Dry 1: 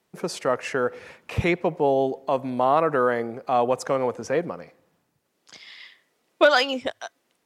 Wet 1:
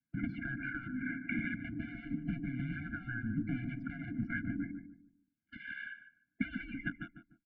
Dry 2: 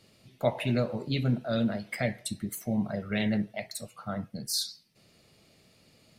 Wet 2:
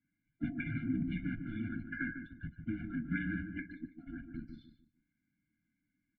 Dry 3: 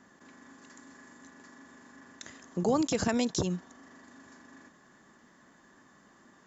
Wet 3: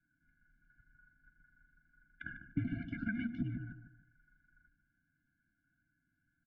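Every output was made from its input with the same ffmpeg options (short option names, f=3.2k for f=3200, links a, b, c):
-filter_complex "[0:a]agate=range=-15dB:threshold=-49dB:ratio=16:detection=peak,acrusher=bits=3:mode=log:mix=0:aa=0.000001,aemphasis=mode=production:type=cd,afftfilt=real='re*lt(hypot(re,im),0.224)':imag='im*lt(hypot(re,im),0.224)':win_size=1024:overlap=0.75,equalizer=f=1.3k:t=o:w=0.77:g=3.5,acompressor=threshold=-41dB:ratio=6,afftdn=nr=14:nf=-56,asplit=2[a][b];[b]adelay=149,lowpass=f=990:p=1,volume=-5.5dB,asplit=2[c][d];[d]adelay=149,lowpass=f=990:p=1,volume=0.35,asplit=2[e][f];[f]adelay=149,lowpass=f=990:p=1,volume=0.35,asplit=2[g][h];[h]adelay=149,lowpass=f=990:p=1,volume=0.35[i];[c][e][g][i]amix=inputs=4:normalize=0[j];[a][j]amix=inputs=2:normalize=0,highpass=f=400:t=q:w=0.5412,highpass=f=400:t=q:w=1.307,lowpass=f=2.1k:t=q:w=0.5176,lowpass=f=2.1k:t=q:w=0.7071,lowpass=f=2.1k:t=q:w=1.932,afreqshift=-240,asuperstop=centerf=940:order=8:qfactor=0.88,afftfilt=real='re*eq(mod(floor(b*sr/1024/340),2),0)':imag='im*eq(mod(floor(b*sr/1024/340),2),0)':win_size=1024:overlap=0.75,volume=16.5dB"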